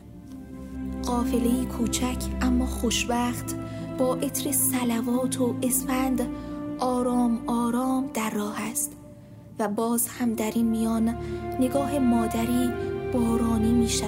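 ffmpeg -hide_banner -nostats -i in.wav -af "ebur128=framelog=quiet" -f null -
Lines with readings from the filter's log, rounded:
Integrated loudness:
  I:         -25.7 LUFS
  Threshold: -36.0 LUFS
Loudness range:
  LRA:         2.1 LU
  Threshold: -46.0 LUFS
  LRA low:   -27.2 LUFS
  LRA high:  -25.1 LUFS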